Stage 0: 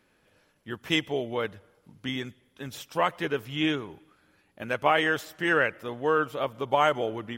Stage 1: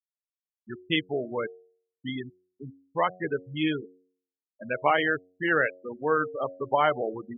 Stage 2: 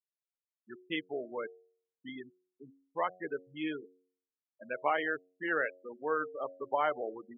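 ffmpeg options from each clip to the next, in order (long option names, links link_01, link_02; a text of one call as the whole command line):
ffmpeg -i in.wav -filter_complex "[0:a]acrossover=split=5100[link_01][link_02];[link_02]acompressor=threshold=-56dB:ratio=4:attack=1:release=60[link_03];[link_01][link_03]amix=inputs=2:normalize=0,afftfilt=real='re*gte(hypot(re,im),0.0708)':imag='im*gte(hypot(re,im),0.0708)':win_size=1024:overlap=0.75,bandreject=frequency=91.45:width_type=h:width=4,bandreject=frequency=182.9:width_type=h:width=4,bandreject=frequency=274.35:width_type=h:width=4,bandreject=frequency=365.8:width_type=h:width=4,bandreject=frequency=457.25:width_type=h:width=4,bandreject=frequency=548.7:width_type=h:width=4,bandreject=frequency=640.15:width_type=h:width=4,bandreject=frequency=731.6:width_type=h:width=4" out.wav
ffmpeg -i in.wav -af "highpass=280,lowpass=2600,volume=-7dB" out.wav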